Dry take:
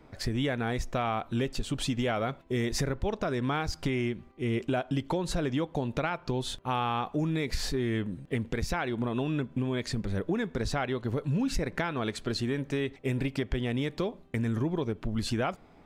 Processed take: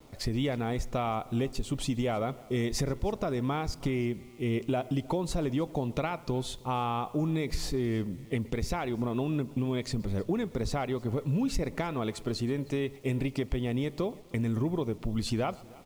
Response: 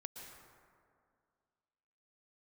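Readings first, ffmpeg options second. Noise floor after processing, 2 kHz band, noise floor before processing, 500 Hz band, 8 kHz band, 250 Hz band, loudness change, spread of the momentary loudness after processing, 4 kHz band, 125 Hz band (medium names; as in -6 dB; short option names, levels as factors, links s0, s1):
-50 dBFS, -5.0 dB, -55 dBFS, 0.0 dB, -1.0 dB, 0.0 dB, -0.5 dB, 3 LU, -3.0 dB, 0.0 dB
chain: -filter_complex "[0:a]asplit=2[s0][s1];[s1]aecho=0:1:312:0.0668[s2];[s0][s2]amix=inputs=2:normalize=0,adynamicequalizer=threshold=0.00355:dfrequency=3300:dqfactor=0.88:tfrequency=3300:tqfactor=0.88:attack=5:release=100:ratio=0.375:range=2.5:mode=cutabove:tftype=bell,asplit=2[s3][s4];[s4]adelay=125,lowpass=f=4400:p=1,volume=0.0794,asplit=2[s5][s6];[s6]adelay=125,lowpass=f=4400:p=1,volume=0.46,asplit=2[s7][s8];[s8]adelay=125,lowpass=f=4400:p=1,volume=0.46[s9];[s5][s7][s9]amix=inputs=3:normalize=0[s10];[s3][s10]amix=inputs=2:normalize=0,acrusher=bits=9:mix=0:aa=0.000001,equalizer=f=1600:t=o:w=0.31:g=-10.5"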